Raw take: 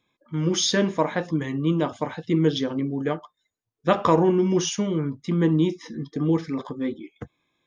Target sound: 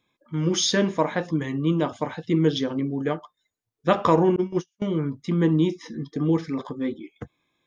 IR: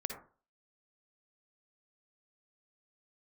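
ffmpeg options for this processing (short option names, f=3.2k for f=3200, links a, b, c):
-filter_complex "[0:a]asettb=1/sr,asplit=3[a][b][c];[a]atrim=end=4.364[d];[b]atrim=start=4.36:end=4.82,asetpts=PTS-STARTPTS,afade=t=in:d=0.004:c=qsin,afade=t=out:st=0.456:d=0.004:c=qsin,agate=range=-49dB:threshold=-19dB:ratio=16:detection=peak[e];[c]atrim=start=4.816[f];[d][e]acrossfade=d=0.004:c1=hsin:c2=qsin[g];[g][f]acrossfade=d=0.004:c1=qsin:c2=hsin"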